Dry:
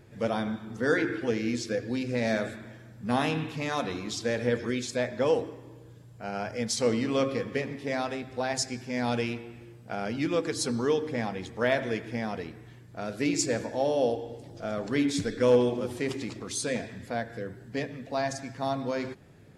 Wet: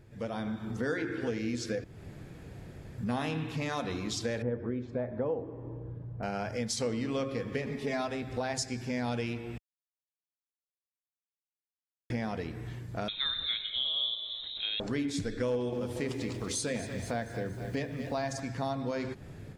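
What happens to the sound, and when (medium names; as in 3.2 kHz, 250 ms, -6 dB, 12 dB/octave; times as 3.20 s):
0.60–1.02 s: echo throw 360 ms, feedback 25%, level -15.5 dB
1.84–2.98 s: room tone
4.42–6.23 s: low-pass 1 kHz
7.66–8.08 s: comb 4.8 ms, depth 72%
9.58–12.10 s: mute
13.08–14.80 s: frequency inversion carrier 3.9 kHz
15.49–18.40 s: bit-crushed delay 235 ms, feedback 55%, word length 9-bit, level -13 dB
whole clip: level rider gain up to 11.5 dB; bass shelf 88 Hz +11 dB; compression 3:1, threshold -28 dBFS; trim -5.5 dB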